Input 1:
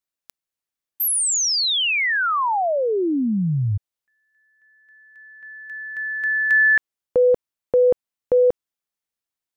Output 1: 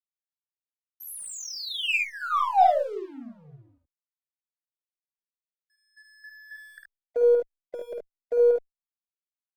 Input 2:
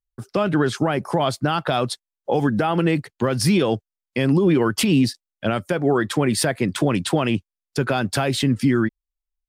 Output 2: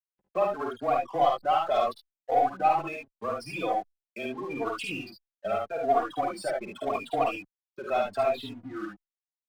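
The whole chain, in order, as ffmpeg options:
ffmpeg -i in.wav -filter_complex "[0:a]afftfilt=real='re*gte(hypot(re,im),0.1)':imag='im*gte(hypot(re,im),0.1)':win_size=1024:overlap=0.75,aemphasis=mode=production:type=50fm,acompressor=mode=upward:threshold=-36dB:ratio=2.5:attack=0.61:release=32:knee=2.83:detection=peak,afreqshift=-19,asplit=3[link_01][link_02][link_03];[link_01]bandpass=frequency=730:width_type=q:width=8,volume=0dB[link_04];[link_02]bandpass=frequency=1090:width_type=q:width=8,volume=-6dB[link_05];[link_03]bandpass=frequency=2440:width_type=q:width=8,volume=-9dB[link_06];[link_04][link_05][link_06]amix=inputs=3:normalize=0,aeval=exprs='0.15*(cos(1*acos(clip(val(0)/0.15,-1,1)))-cos(1*PI/2))+0.00299*(cos(4*acos(clip(val(0)/0.15,-1,1)))-cos(4*PI/2))+0.00237*(cos(5*acos(clip(val(0)/0.15,-1,1)))-cos(5*PI/2))+0.00473*(cos(7*acos(clip(val(0)/0.15,-1,1)))-cos(7*PI/2))':channel_layout=same,aeval=exprs='sgn(val(0))*max(abs(val(0))-0.0015,0)':channel_layout=same,aecho=1:1:52|73:0.631|0.631,asplit=2[link_07][link_08];[link_08]adelay=3.6,afreqshift=0.8[link_09];[link_07][link_09]amix=inputs=2:normalize=1,volume=7dB" out.wav

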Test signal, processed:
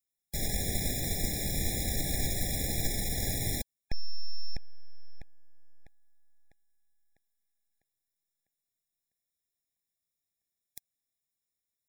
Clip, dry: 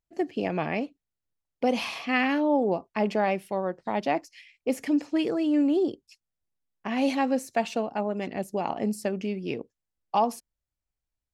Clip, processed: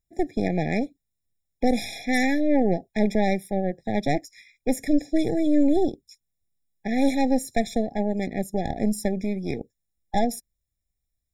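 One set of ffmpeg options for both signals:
ffmpeg -i in.wav -af "aeval=exprs='0.316*(cos(1*acos(clip(val(0)/0.316,-1,1)))-cos(1*PI/2))+0.0398*(cos(6*acos(clip(val(0)/0.316,-1,1)))-cos(6*PI/2))':channel_layout=same,bass=frequency=250:gain=7,treble=frequency=4000:gain=10,afftfilt=real='re*eq(mod(floor(b*sr/1024/830),2),0)':imag='im*eq(mod(floor(b*sr/1024/830),2),0)':win_size=1024:overlap=0.75" out.wav

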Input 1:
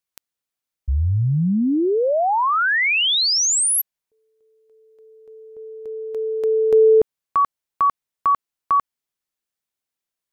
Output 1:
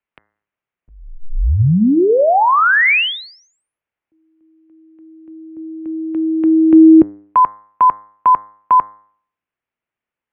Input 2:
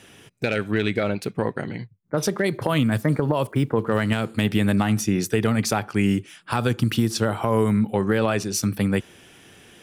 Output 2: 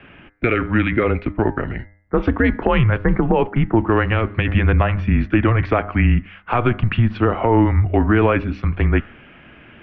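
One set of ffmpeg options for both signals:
ffmpeg -i in.wav -af "bandreject=frequency=105.3:width_type=h:width=4,bandreject=frequency=210.6:width_type=h:width=4,bandreject=frequency=315.9:width_type=h:width=4,bandreject=frequency=421.2:width_type=h:width=4,bandreject=frequency=526.5:width_type=h:width=4,bandreject=frequency=631.8:width_type=h:width=4,bandreject=frequency=737.1:width_type=h:width=4,bandreject=frequency=842.4:width_type=h:width=4,bandreject=frequency=947.7:width_type=h:width=4,bandreject=frequency=1053:width_type=h:width=4,bandreject=frequency=1158.3:width_type=h:width=4,bandreject=frequency=1263.6:width_type=h:width=4,bandreject=frequency=1368.9:width_type=h:width=4,bandreject=frequency=1474.2:width_type=h:width=4,bandreject=frequency=1579.5:width_type=h:width=4,bandreject=frequency=1684.8:width_type=h:width=4,bandreject=frequency=1790.1:width_type=h:width=4,bandreject=frequency=1895.4:width_type=h:width=4,bandreject=frequency=2000.7:width_type=h:width=4,bandreject=frequency=2106:width_type=h:width=4,bandreject=frequency=2211.3:width_type=h:width=4,highpass=frequency=160:width_type=q:width=0.5412,highpass=frequency=160:width_type=q:width=1.307,lowpass=frequency=2800:width_type=q:width=0.5176,lowpass=frequency=2800:width_type=q:width=0.7071,lowpass=frequency=2800:width_type=q:width=1.932,afreqshift=-120,volume=7dB" out.wav

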